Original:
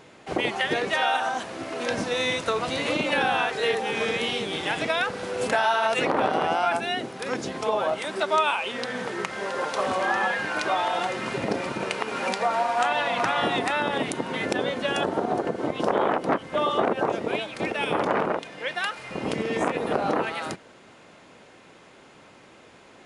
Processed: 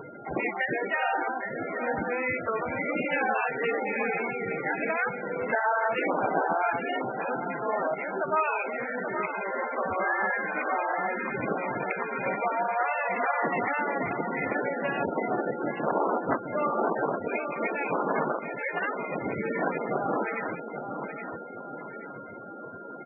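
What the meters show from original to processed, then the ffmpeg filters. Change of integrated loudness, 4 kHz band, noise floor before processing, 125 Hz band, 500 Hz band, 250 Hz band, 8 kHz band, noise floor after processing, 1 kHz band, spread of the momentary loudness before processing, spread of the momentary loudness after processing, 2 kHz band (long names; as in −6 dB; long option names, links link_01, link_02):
−3.0 dB, below −20 dB, −51 dBFS, −3.5 dB, −3.0 dB, −3.0 dB, below −40 dB, −41 dBFS, −2.5 dB, 7 LU, 8 LU, −2.0 dB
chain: -filter_complex "[0:a]afftdn=noise_reduction=32:noise_floor=-44,aexciter=amount=14.2:drive=3.7:freq=9300,highshelf=frequency=2800:width_type=q:width=3:gain=-7,acompressor=mode=upward:threshold=-26dB:ratio=2.5,aemphasis=mode=reproduction:type=50fm,asoftclip=type=tanh:threshold=-9.5dB,aeval=exprs='val(0)+0.00708*sin(2*PI*1400*n/s)':channel_layout=same,asplit=2[link_01][link_02];[link_02]adelay=825,lowpass=frequency=3500:poles=1,volume=-7.5dB,asplit=2[link_03][link_04];[link_04]adelay=825,lowpass=frequency=3500:poles=1,volume=0.48,asplit=2[link_05][link_06];[link_06]adelay=825,lowpass=frequency=3500:poles=1,volume=0.48,asplit=2[link_07][link_08];[link_08]adelay=825,lowpass=frequency=3500:poles=1,volume=0.48,asplit=2[link_09][link_10];[link_10]adelay=825,lowpass=frequency=3500:poles=1,volume=0.48,asplit=2[link_11][link_12];[link_12]adelay=825,lowpass=frequency=3500:poles=1,volume=0.48[link_13];[link_01][link_03][link_05][link_07][link_09][link_11][link_13]amix=inputs=7:normalize=0,volume=-4dB" -ar 24000 -c:a libmp3lame -b:a 8k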